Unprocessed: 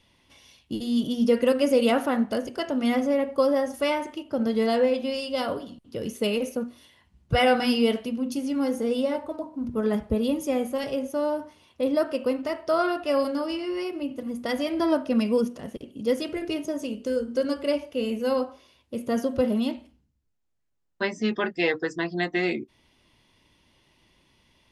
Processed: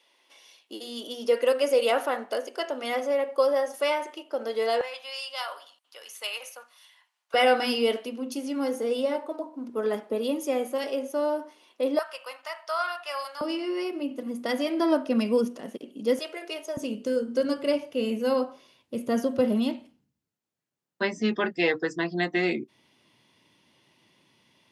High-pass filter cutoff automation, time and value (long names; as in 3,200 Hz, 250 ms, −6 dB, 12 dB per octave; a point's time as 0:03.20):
high-pass filter 24 dB per octave
390 Hz
from 0:04.81 840 Hz
from 0:07.34 290 Hz
from 0:11.99 840 Hz
from 0:13.41 210 Hz
from 0:16.19 480 Hz
from 0:16.77 120 Hz